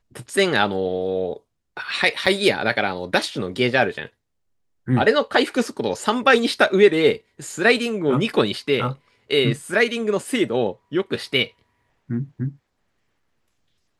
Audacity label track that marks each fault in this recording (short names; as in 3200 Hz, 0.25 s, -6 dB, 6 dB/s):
2.260000	2.270000	gap 5.5 ms